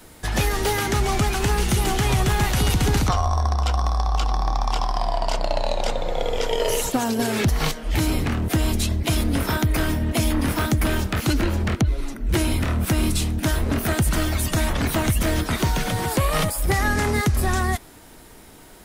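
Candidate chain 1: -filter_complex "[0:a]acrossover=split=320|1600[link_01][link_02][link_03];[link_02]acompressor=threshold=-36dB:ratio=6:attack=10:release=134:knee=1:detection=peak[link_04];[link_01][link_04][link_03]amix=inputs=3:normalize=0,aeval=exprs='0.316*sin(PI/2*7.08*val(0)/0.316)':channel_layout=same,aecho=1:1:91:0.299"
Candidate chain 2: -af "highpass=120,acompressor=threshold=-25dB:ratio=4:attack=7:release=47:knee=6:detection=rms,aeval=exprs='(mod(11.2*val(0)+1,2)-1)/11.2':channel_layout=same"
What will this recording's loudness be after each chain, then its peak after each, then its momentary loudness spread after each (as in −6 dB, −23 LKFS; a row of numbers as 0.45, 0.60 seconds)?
−12.0, −28.0 LKFS; −7.5, −21.0 dBFS; 3, 4 LU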